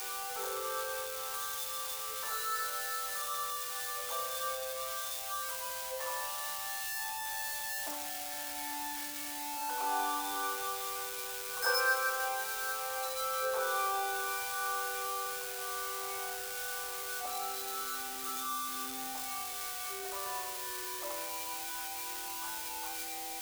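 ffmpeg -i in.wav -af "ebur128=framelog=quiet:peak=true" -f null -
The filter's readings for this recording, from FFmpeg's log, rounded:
Integrated loudness:
  I:         -35.2 LUFS
  Threshold: -45.2 LUFS
Loudness range:
  LRA:         4.1 LU
  Threshold: -55.1 LUFS
  LRA low:   -36.8 LUFS
  LRA high:  -32.7 LUFS
True peak:
  Peak:      -19.9 dBFS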